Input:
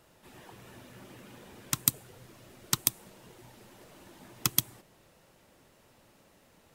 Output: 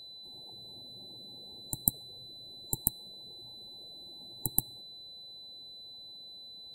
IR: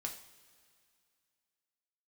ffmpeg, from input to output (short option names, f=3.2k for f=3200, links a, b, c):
-af "aeval=exprs='0.75*(cos(1*acos(clip(val(0)/0.75,-1,1)))-cos(1*PI/2))+0.0944*(cos(4*acos(clip(val(0)/0.75,-1,1)))-cos(4*PI/2))+0.0473*(cos(7*acos(clip(val(0)/0.75,-1,1)))-cos(7*PI/2))':c=same,areverse,acompressor=mode=upward:threshold=-58dB:ratio=2.5,areverse,afftfilt=real='re*(1-between(b*sr/4096,900,7300))':imag='im*(1-between(b*sr/4096,900,7300))':win_size=4096:overlap=0.75,aeval=exprs='val(0)+0.00562*sin(2*PI*4000*n/s)':c=same,volume=-1dB"